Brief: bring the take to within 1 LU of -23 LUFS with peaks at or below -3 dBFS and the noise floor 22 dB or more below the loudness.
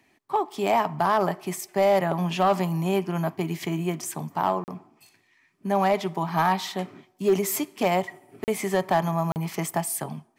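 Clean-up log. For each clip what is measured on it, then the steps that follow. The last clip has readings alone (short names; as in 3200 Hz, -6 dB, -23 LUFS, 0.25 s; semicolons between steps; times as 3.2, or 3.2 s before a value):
clipped 0.5%; flat tops at -14.0 dBFS; dropouts 3; longest dropout 39 ms; loudness -25.5 LUFS; peak -14.0 dBFS; loudness target -23.0 LUFS
-> clip repair -14 dBFS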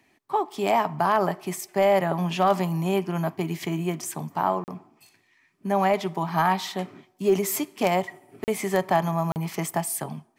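clipped 0.0%; dropouts 3; longest dropout 39 ms
-> interpolate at 4.64/8.44/9.32, 39 ms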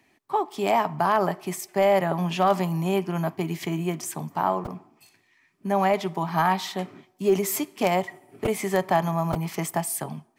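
dropouts 0; loudness -25.5 LUFS; peak -6.0 dBFS; loudness target -23.0 LUFS
-> gain +2.5 dB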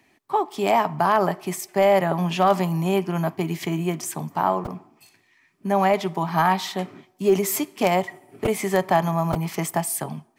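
loudness -23.0 LUFS; peak -3.5 dBFS; noise floor -62 dBFS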